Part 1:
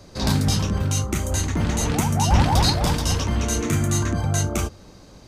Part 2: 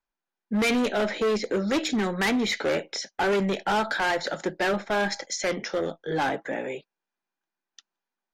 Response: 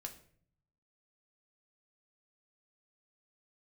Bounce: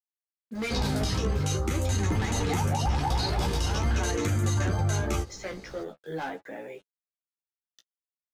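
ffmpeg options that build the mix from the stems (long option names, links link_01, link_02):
-filter_complex "[0:a]acrossover=split=5600[link_01][link_02];[link_02]acompressor=threshold=-34dB:ratio=4:attack=1:release=60[link_03];[link_01][link_03]amix=inputs=2:normalize=0,aecho=1:1:2.4:0.34,adelay=550,volume=1dB[link_04];[1:a]acrusher=bits=7:mix=0:aa=0.5,adynamicequalizer=threshold=0.00794:dfrequency=2500:dqfactor=0.7:tfrequency=2500:tqfactor=0.7:attack=5:release=100:ratio=0.375:range=3:mode=cutabove:tftype=highshelf,volume=-5.5dB[link_05];[link_04][link_05]amix=inputs=2:normalize=0,flanger=delay=9.1:depth=7.3:regen=13:speed=0.45:shape=triangular,alimiter=limit=-18dB:level=0:latency=1:release=82"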